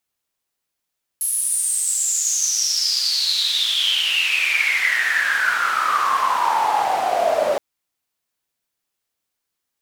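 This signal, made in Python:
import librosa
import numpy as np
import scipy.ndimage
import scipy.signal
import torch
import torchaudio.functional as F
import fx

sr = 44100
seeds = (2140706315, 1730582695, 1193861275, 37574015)

y = fx.riser_noise(sr, seeds[0], length_s=6.37, colour='white', kind='bandpass', start_hz=11000.0, end_hz=570.0, q=12.0, swell_db=14, law='exponential')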